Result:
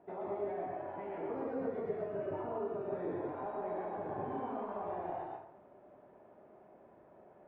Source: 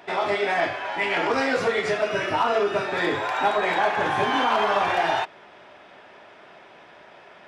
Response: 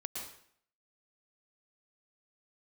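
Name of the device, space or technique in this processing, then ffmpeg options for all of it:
television next door: -filter_complex "[0:a]acompressor=threshold=-26dB:ratio=3,lowpass=560[link_01];[1:a]atrim=start_sample=2205[link_02];[link_01][link_02]afir=irnorm=-1:irlink=0,volume=-5.5dB"

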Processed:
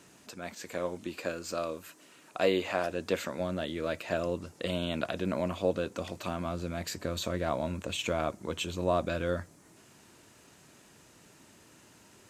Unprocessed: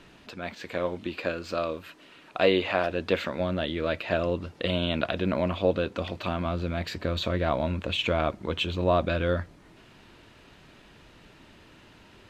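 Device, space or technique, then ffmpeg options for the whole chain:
budget condenser microphone: -af "highpass=96,highshelf=frequency=5100:width_type=q:width=1.5:gain=12.5,volume=-4.5dB"

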